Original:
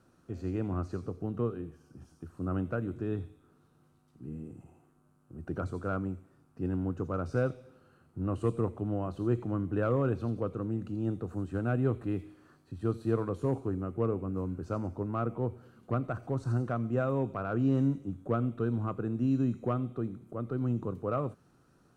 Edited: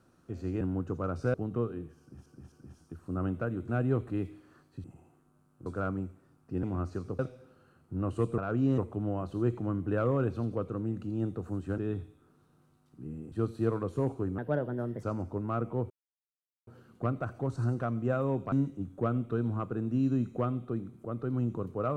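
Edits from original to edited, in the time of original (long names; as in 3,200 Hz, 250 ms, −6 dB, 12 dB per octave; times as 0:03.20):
0:00.61–0:01.17: swap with 0:06.71–0:07.44
0:01.83–0:02.09: repeat, 3 plays
0:03.00–0:04.54: swap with 0:11.63–0:12.78
0:05.36–0:05.74: remove
0:13.84–0:14.68: play speed 129%
0:15.55: splice in silence 0.77 s
0:17.40–0:17.80: move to 0:08.63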